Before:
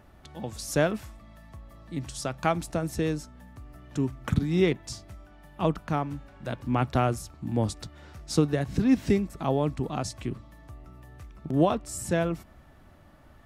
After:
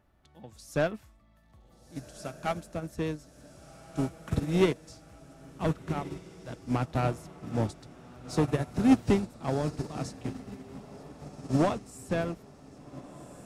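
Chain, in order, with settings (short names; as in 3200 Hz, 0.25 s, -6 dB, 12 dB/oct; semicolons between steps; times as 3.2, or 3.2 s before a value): soft clip -20 dBFS, distortion -11 dB; on a send: diffused feedback echo 1.536 s, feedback 60%, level -6 dB; on the sum: upward expander 2.5:1, over -34 dBFS; gain +6 dB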